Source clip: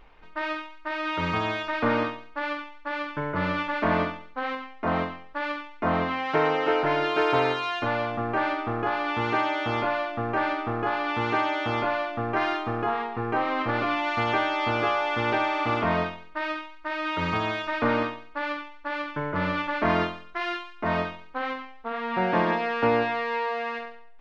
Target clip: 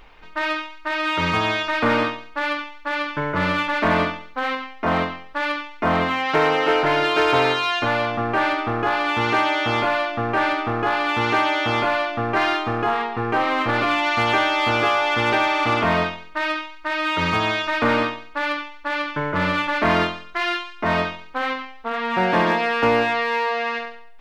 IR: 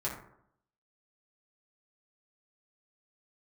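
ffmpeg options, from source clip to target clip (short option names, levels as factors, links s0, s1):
-filter_complex "[0:a]highshelf=f=2200:g=7.5,asplit=2[s0][s1];[s1]asoftclip=type=hard:threshold=0.1,volume=0.708[s2];[s0][s2]amix=inputs=2:normalize=0"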